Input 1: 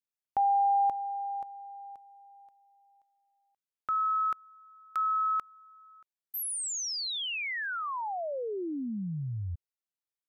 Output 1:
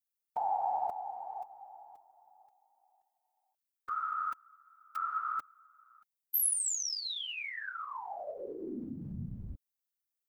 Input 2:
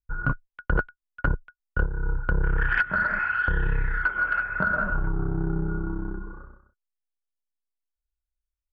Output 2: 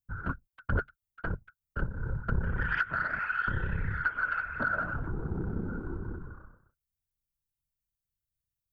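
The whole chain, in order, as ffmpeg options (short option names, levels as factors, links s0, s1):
-af "afftfilt=real='hypot(re,im)*cos(2*PI*random(0))':imag='hypot(re,im)*sin(2*PI*random(1))':win_size=512:overlap=0.75,aemphasis=mode=production:type=50kf,aphaser=in_gain=1:out_gain=1:delay=4.3:decay=0.22:speed=1.3:type=triangular,volume=0.841"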